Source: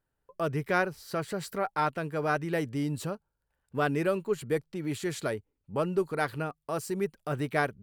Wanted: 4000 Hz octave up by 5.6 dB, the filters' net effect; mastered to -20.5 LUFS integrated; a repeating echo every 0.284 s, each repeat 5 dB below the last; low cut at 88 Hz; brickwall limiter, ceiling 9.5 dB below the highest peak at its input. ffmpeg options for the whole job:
-af "highpass=88,equalizer=f=4k:t=o:g=7,alimiter=limit=-19.5dB:level=0:latency=1,aecho=1:1:284|568|852|1136|1420|1704|1988:0.562|0.315|0.176|0.0988|0.0553|0.031|0.0173,volume=11dB"

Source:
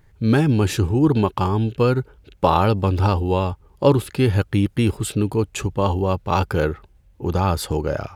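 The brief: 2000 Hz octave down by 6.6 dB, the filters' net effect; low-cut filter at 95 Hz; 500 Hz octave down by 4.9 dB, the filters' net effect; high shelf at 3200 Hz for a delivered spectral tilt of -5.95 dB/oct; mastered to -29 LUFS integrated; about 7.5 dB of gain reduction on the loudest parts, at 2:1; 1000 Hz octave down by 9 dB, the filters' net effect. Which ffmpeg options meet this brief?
-af "highpass=95,equalizer=f=500:t=o:g=-4,equalizer=f=1k:t=o:g=-8.5,equalizer=f=2k:t=o:g=-8.5,highshelf=f=3.2k:g=4.5,acompressor=threshold=-28dB:ratio=2,volume=0.5dB"

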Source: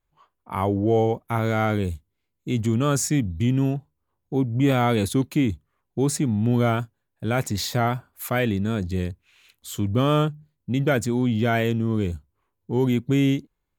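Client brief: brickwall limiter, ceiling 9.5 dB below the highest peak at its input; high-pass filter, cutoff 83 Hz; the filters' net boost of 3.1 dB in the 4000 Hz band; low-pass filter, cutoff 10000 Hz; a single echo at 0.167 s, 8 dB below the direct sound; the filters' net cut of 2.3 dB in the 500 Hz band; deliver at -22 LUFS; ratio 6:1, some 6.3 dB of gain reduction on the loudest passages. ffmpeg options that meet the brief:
-af "highpass=83,lowpass=10k,equalizer=f=500:t=o:g=-3,equalizer=f=4k:t=o:g=4,acompressor=threshold=-23dB:ratio=6,alimiter=limit=-21.5dB:level=0:latency=1,aecho=1:1:167:0.398,volume=9.5dB"

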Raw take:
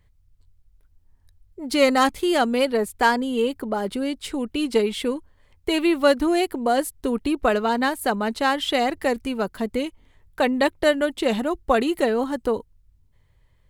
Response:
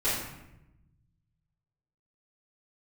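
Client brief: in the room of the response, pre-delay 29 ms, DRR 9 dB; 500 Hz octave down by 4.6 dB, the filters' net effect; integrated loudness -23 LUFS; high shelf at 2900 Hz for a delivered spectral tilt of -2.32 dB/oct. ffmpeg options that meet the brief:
-filter_complex "[0:a]equalizer=f=500:t=o:g=-5.5,highshelf=f=2.9k:g=-3.5,asplit=2[a][b];[1:a]atrim=start_sample=2205,adelay=29[c];[b][c]afir=irnorm=-1:irlink=0,volume=-19.5dB[d];[a][d]amix=inputs=2:normalize=0,volume=1.5dB"

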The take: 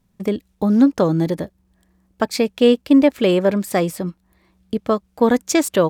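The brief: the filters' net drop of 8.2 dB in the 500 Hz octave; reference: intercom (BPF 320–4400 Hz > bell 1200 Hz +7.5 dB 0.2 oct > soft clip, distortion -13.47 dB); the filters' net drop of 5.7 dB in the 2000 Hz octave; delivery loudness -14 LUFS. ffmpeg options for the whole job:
-af "highpass=320,lowpass=4.4k,equalizer=f=500:t=o:g=-8.5,equalizer=f=1.2k:t=o:w=0.2:g=7.5,equalizer=f=2k:t=o:g=-7,asoftclip=threshold=-16.5dB,volume=14dB"

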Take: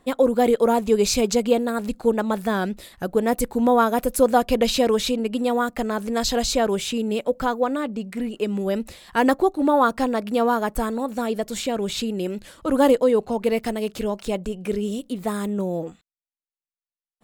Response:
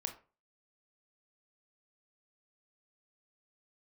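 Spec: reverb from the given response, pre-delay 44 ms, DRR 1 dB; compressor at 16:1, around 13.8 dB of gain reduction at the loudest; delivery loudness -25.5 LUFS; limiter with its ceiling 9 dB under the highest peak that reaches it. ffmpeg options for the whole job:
-filter_complex "[0:a]acompressor=threshold=-26dB:ratio=16,alimiter=level_in=1.5dB:limit=-24dB:level=0:latency=1,volume=-1.5dB,asplit=2[a][b];[1:a]atrim=start_sample=2205,adelay=44[c];[b][c]afir=irnorm=-1:irlink=0,volume=-0.5dB[d];[a][d]amix=inputs=2:normalize=0,volume=6.5dB"

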